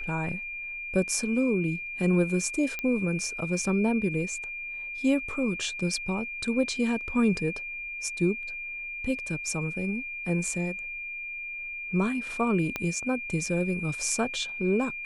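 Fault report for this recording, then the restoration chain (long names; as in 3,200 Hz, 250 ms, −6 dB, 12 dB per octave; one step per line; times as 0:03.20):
whistle 2,400 Hz −34 dBFS
0:02.79: click −17 dBFS
0:12.76: click −15 dBFS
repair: click removal
notch filter 2,400 Hz, Q 30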